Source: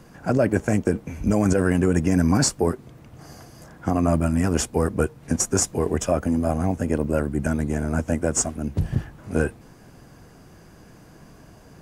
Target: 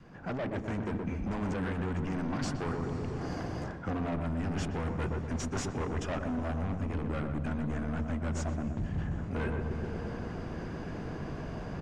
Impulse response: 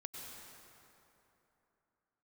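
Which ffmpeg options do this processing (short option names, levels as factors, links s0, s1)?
-filter_complex "[0:a]asoftclip=type=hard:threshold=0.0596,lowpass=3400,asplit=2[s0][s1];[s1]adelay=123,lowpass=f=1000:p=1,volume=0.631,asplit=2[s2][s3];[s3]adelay=123,lowpass=f=1000:p=1,volume=0.55,asplit=2[s4][s5];[s5]adelay=123,lowpass=f=1000:p=1,volume=0.55,asplit=2[s6][s7];[s7]adelay=123,lowpass=f=1000:p=1,volume=0.55,asplit=2[s8][s9];[s9]adelay=123,lowpass=f=1000:p=1,volume=0.55,asplit=2[s10][s11];[s11]adelay=123,lowpass=f=1000:p=1,volume=0.55,asplit=2[s12][s13];[s13]adelay=123,lowpass=f=1000:p=1,volume=0.55[s14];[s0][s2][s4][s6][s8][s10][s12][s14]amix=inputs=8:normalize=0,dynaudnorm=f=340:g=5:m=4.22,asplit=2[s15][s16];[1:a]atrim=start_sample=2205,asetrate=23814,aresample=44100[s17];[s16][s17]afir=irnorm=-1:irlink=0,volume=0.168[s18];[s15][s18]amix=inputs=2:normalize=0,adynamicequalizer=threshold=0.0316:dfrequency=470:dqfactor=1.5:tfrequency=470:tqfactor=1.5:attack=5:release=100:ratio=0.375:range=3:mode=cutabove:tftype=bell,areverse,acompressor=threshold=0.0501:ratio=6,areverse,volume=0.531"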